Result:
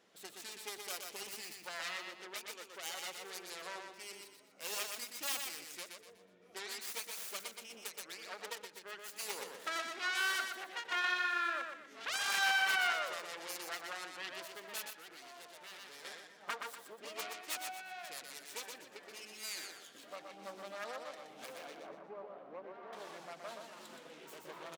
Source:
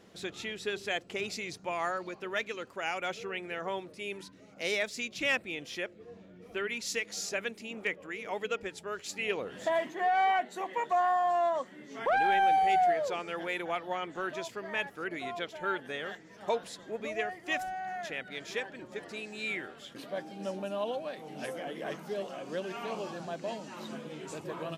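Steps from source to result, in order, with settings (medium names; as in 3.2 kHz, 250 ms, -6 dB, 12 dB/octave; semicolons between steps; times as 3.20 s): self-modulated delay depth 0.67 ms; 21.74–22.93 s: low-pass 1.1 kHz 12 dB/octave; feedback delay 122 ms, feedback 34%, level -5 dB; 14.93–16.05 s: valve stage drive 41 dB, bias 0.5; high-pass 750 Hz 6 dB/octave; endings held to a fixed fall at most 230 dB/s; trim -6.5 dB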